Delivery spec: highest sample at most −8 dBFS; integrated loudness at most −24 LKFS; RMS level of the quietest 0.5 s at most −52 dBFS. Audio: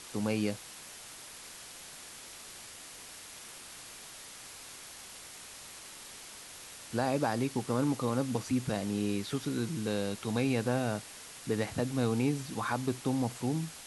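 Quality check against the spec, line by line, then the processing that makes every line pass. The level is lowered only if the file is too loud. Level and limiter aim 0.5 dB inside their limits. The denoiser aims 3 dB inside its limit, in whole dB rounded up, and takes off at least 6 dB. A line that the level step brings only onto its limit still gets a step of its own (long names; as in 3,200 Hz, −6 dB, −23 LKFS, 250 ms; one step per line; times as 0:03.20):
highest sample −16.5 dBFS: in spec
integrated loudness −32.5 LKFS: in spec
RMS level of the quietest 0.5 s −48 dBFS: out of spec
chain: broadband denoise 7 dB, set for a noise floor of −48 dBFS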